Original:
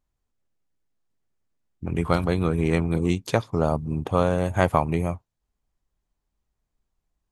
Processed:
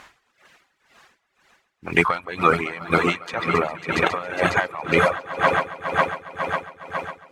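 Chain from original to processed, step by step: modulation noise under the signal 33 dB; reverse; upward compressor, threshold -33 dBFS; reverse; soft clip -8 dBFS, distortion -19 dB; band-pass 1800 Hz, Q 1.2; on a send: swelling echo 0.137 s, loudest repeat 5, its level -12 dB; on the sum: reverb removal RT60 1.3 s; maximiser +24 dB; dB-linear tremolo 2 Hz, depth 19 dB

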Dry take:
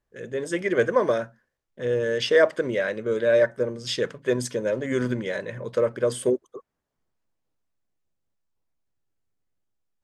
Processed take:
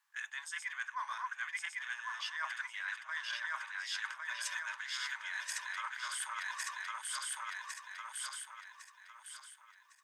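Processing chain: regenerating reverse delay 0.553 s, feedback 57%, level -2.5 dB; steep high-pass 880 Hz 72 dB/oct; reverse; compressor 16:1, threshold -44 dBFS, peak gain reduction 23.5 dB; reverse; gain +7.5 dB

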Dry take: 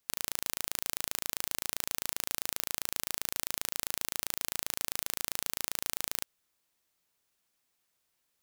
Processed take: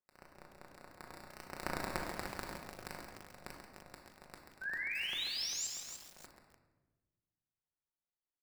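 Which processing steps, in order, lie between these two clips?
Doppler pass-by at 1.79, 33 m/s, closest 3.6 m; HPF 470 Hz 24 dB/oct; bell 4200 Hz +6.5 dB 0.9 oct; in parallel at -1 dB: compressor, threshold -48 dBFS, peak gain reduction 19.5 dB; on the sum: sample-rate reducer 3200 Hz, jitter 0%; painted sound rise, 4.61–5.67, 1500–7700 Hz -37 dBFS; harmonic tremolo 4.7 Hz, depth 50%, crossover 2400 Hz; feedback echo 0.136 s, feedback 24%, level -7.5 dB; on a send at -1 dB: reverb RT60 1.2 s, pre-delay 5 ms; on the sum: lo-fi delay 0.298 s, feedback 55%, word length 7-bit, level -6.5 dB; gain -2.5 dB

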